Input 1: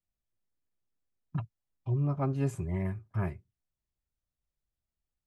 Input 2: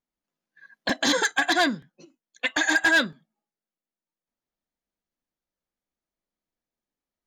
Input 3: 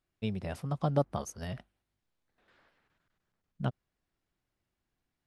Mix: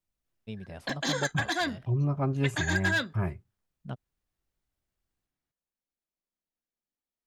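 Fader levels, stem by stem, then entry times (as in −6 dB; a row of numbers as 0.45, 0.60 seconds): +2.0, −8.0, −6.0 decibels; 0.00, 0.00, 0.25 seconds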